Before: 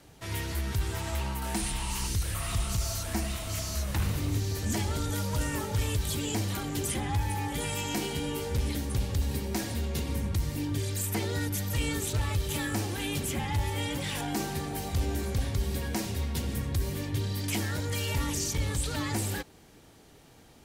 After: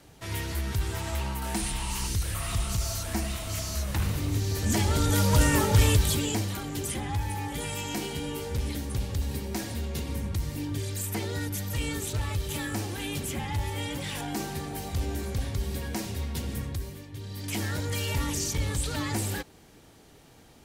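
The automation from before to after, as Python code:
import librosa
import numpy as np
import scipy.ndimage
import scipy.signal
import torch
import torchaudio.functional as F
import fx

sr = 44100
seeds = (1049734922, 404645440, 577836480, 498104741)

y = fx.gain(x, sr, db=fx.line((4.3, 1.0), (5.33, 9.0), (5.88, 9.0), (6.55, -1.0), (16.64, -1.0), (17.08, -11.5), (17.65, 1.0)))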